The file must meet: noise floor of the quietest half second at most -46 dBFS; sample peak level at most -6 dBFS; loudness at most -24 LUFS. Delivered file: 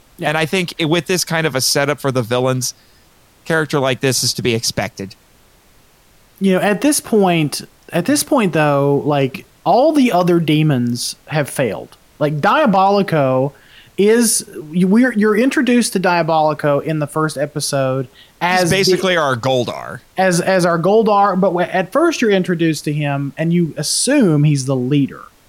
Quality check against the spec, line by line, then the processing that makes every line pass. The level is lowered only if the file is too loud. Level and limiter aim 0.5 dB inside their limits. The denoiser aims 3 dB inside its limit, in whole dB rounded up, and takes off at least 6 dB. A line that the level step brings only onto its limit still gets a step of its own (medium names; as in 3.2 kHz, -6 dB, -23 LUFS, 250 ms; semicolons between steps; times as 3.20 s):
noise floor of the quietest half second -50 dBFS: pass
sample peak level -4.5 dBFS: fail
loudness -15.5 LUFS: fail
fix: trim -9 dB